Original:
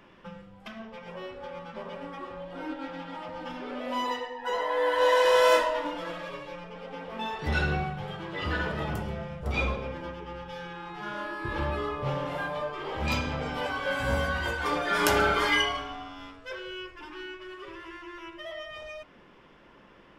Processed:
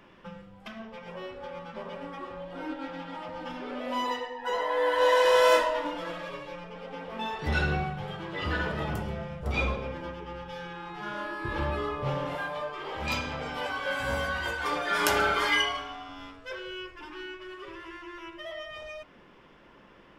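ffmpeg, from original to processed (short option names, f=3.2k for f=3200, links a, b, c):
-filter_complex "[0:a]asettb=1/sr,asplit=3[a][b][c];[a]atrim=end=12.354[d];[b]atrim=start=12.35:end=16.09,asetpts=PTS-STARTPTS,afade=t=in:d=0.004:c=qsin,afade=t=out:st=3.736:d=0.004:c=qsin,lowshelf=f=410:g=-6.5[e];[c]atrim=start=16.086[f];[d][e]acrossfade=d=0.004:c1=hsin:c2=qsin[g];[g][f]acrossfade=d=0.004:c1=qsin:c2=hsin"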